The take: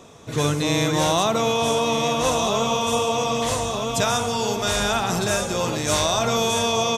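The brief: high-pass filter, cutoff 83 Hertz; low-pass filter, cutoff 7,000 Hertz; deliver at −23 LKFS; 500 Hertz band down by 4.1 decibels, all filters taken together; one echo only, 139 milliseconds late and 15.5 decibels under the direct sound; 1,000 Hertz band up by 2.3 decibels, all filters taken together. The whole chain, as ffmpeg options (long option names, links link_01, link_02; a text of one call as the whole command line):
ffmpeg -i in.wav -af "highpass=83,lowpass=7000,equalizer=frequency=500:width_type=o:gain=-7,equalizer=frequency=1000:width_type=o:gain=5,aecho=1:1:139:0.168,volume=-1dB" out.wav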